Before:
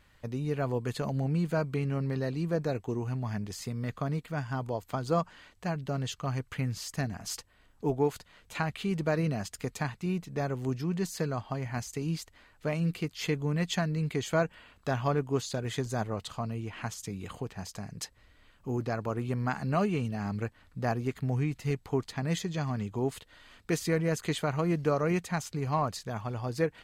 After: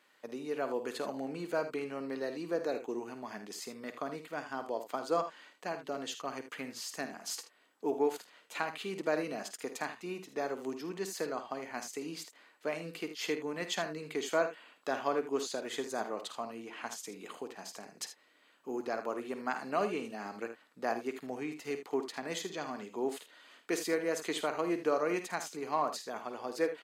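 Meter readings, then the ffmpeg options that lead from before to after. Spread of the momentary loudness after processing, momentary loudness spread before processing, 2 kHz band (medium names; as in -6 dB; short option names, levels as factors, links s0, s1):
11 LU, 9 LU, -1.5 dB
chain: -af "highpass=f=280:w=0.5412,highpass=f=280:w=1.3066,aecho=1:1:52|78:0.266|0.251,volume=0.794"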